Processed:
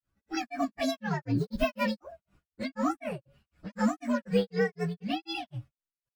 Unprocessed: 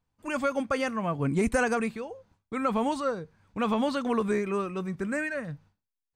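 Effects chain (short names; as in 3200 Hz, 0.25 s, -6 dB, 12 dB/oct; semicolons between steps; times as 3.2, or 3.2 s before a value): inharmonic rescaling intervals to 130%; grains 0.223 s, grains 4/s, pitch spread up and down by 0 st; gain +5 dB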